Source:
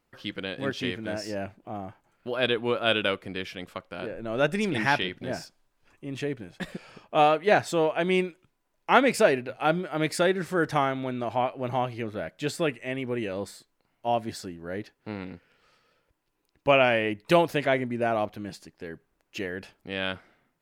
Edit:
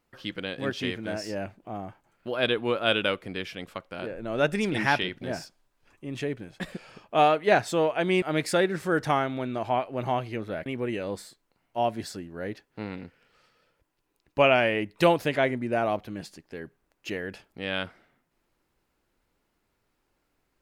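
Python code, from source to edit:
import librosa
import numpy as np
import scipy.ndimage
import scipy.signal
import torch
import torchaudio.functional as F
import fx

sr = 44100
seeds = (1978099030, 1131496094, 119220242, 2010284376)

y = fx.edit(x, sr, fx.cut(start_s=8.22, length_s=1.66),
    fx.cut(start_s=12.32, length_s=0.63), tone=tone)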